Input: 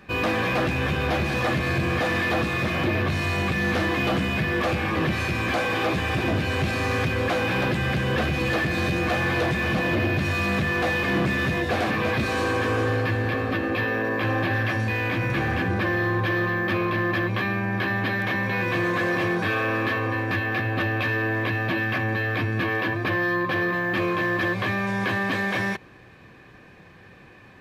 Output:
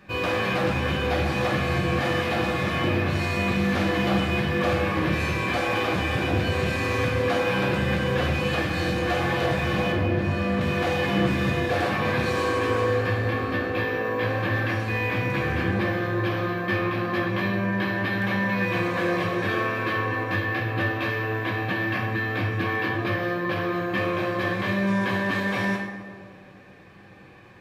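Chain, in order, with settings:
0:09.92–0:10.61: high-shelf EQ 2,500 Hz −11 dB
tape delay 129 ms, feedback 82%, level −8 dB, low-pass 1,300 Hz
coupled-rooms reverb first 0.62 s, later 2.2 s, from −18 dB, DRR −0.5 dB
level −4 dB

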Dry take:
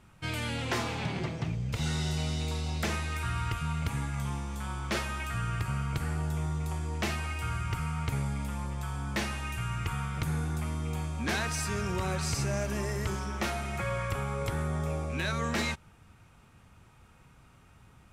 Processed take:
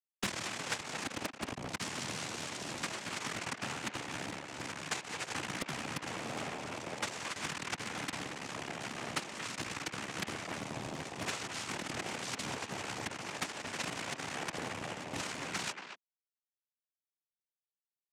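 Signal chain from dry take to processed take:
dynamic equaliser 2,100 Hz, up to +7 dB, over −51 dBFS, Q 2.6
downward compressor 10 to 1, threshold −41 dBFS, peak gain reduction 16.5 dB
log-companded quantiser 2 bits
cochlear-implant simulation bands 4
far-end echo of a speakerphone 230 ms, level −7 dB
highs frequency-modulated by the lows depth 0.94 ms
level −2.5 dB

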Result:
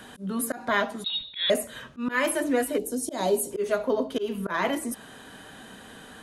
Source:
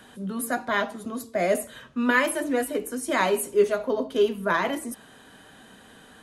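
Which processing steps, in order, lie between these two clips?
volume swells 171 ms
0:02.78–0:03.51: flat-topped bell 1,700 Hz −14 dB
in parallel at −1 dB: downward compressor, threshold −35 dBFS, peak gain reduction 15.5 dB
0:01.04–0:01.50: on the sum: voice inversion scrambler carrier 4,000 Hz
level −1 dB

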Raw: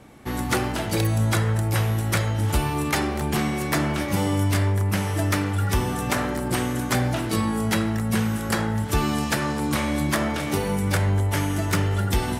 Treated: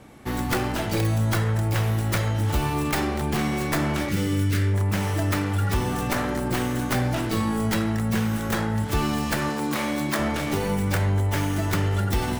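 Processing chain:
stylus tracing distortion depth 0.39 ms
0:04.09–0:04.74: flat-topped bell 800 Hz −13 dB 1.1 octaves
0:09.49–0:10.19: Bessel high-pass filter 200 Hz, order 2
in parallel at 0 dB: brickwall limiter −17.5 dBFS, peak gain reduction 7 dB
on the sum: level −5.5 dB

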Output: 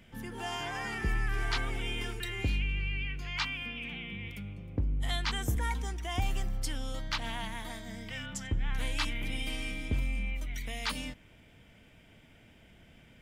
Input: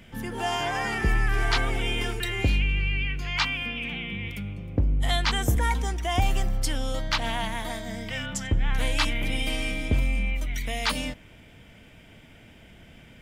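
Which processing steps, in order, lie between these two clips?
dynamic equaliser 610 Hz, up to −5 dB, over −45 dBFS, Q 1.9
level −7.5 dB

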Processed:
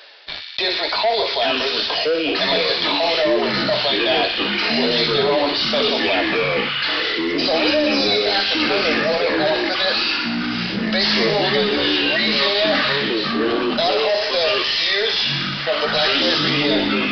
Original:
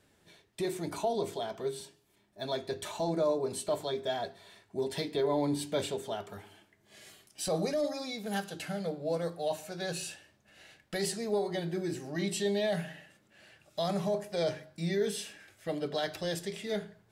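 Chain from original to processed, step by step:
Chebyshev high-pass filter 550 Hz, order 3
high-shelf EQ 2,300 Hz +12 dB
leveller curve on the samples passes 5
reversed playback
upward compression, threshold −33 dBFS
reversed playback
flanger 1.8 Hz, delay 8.1 ms, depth 5.5 ms, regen +53%
delay with pitch and tempo change per echo 590 ms, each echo −6 semitones, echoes 3
on a send: delay with a high-pass on its return 61 ms, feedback 74%, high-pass 1,900 Hz, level −7.5 dB
on the sum: downsampling to 11,025 Hz
envelope flattener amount 50%

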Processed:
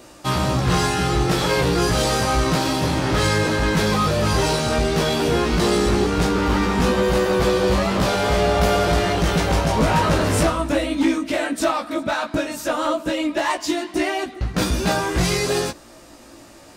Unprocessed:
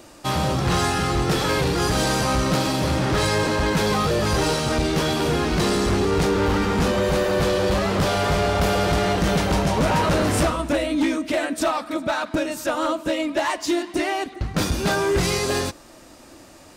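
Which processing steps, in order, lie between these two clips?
chorus effect 0.14 Hz, delay 16 ms, depth 2.4 ms
level +4.5 dB

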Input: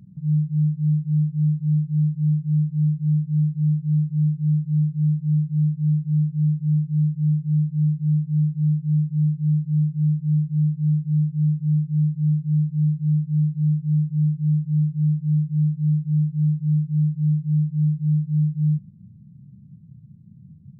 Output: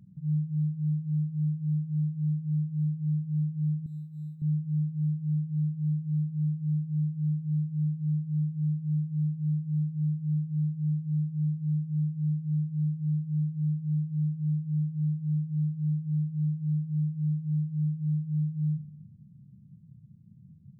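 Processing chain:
0:03.86–0:04.42: spectral tilt +3.5 dB per octave
convolution reverb RT60 1.3 s, pre-delay 7 ms, DRR 18.5 dB
level −7 dB

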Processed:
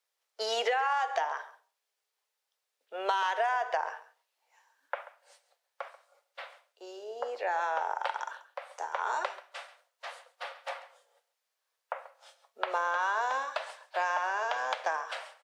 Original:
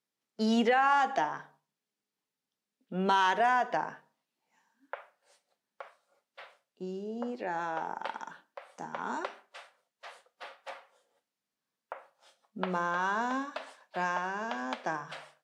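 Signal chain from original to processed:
Butterworth high-pass 480 Hz 36 dB per octave
downward compressor 10 to 1, threshold −31 dBFS, peak gain reduction 10 dB
on a send: single-tap delay 136 ms −17 dB
on the sum: level +5.5 dB

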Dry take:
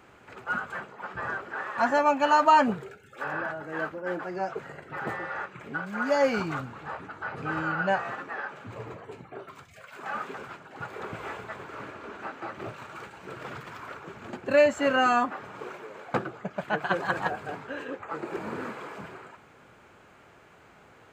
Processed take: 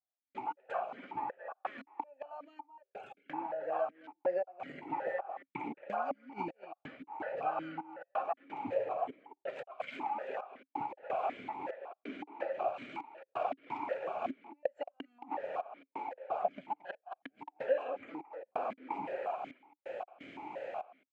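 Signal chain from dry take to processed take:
gate pattern "....xx..xxxxxxx" 173 BPM −60 dB
automatic gain control gain up to 6 dB
flat-topped bell 710 Hz +9.5 dB 1 octave
gate with flip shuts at −5 dBFS, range −36 dB
far-end echo of a speakerphone 220 ms, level −17 dB
downward compressor 6 to 1, threshold −37 dBFS, peak gain reduction 22.5 dB
formant filter that steps through the vowels 5.4 Hz
level +12.5 dB

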